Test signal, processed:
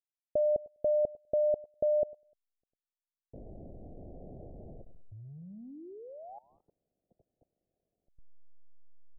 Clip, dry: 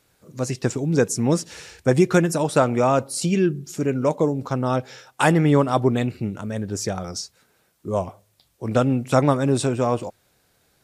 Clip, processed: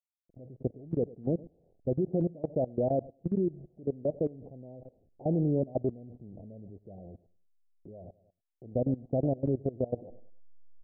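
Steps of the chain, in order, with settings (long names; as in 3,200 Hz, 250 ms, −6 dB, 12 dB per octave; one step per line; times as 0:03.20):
hold until the input has moved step −35.5 dBFS
Butterworth low-pass 710 Hz 72 dB per octave
repeating echo 100 ms, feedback 32%, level −18 dB
output level in coarse steps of 20 dB
level −6.5 dB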